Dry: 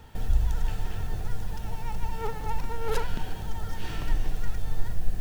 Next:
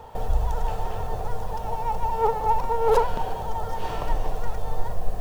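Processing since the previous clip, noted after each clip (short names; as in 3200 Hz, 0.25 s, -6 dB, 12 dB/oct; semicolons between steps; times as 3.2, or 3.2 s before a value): band shelf 710 Hz +14 dB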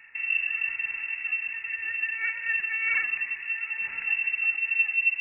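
inverted band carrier 2700 Hz; gain -8.5 dB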